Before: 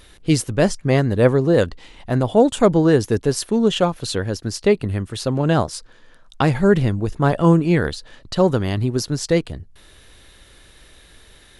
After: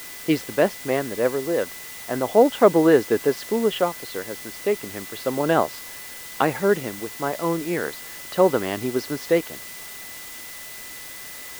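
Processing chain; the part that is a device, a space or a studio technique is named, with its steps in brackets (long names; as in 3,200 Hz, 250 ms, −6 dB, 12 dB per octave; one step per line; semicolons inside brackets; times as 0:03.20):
shortwave radio (band-pass filter 330–2,600 Hz; amplitude tremolo 0.34 Hz, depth 59%; steady tone 2,000 Hz −45 dBFS; white noise bed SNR 15 dB)
level +2 dB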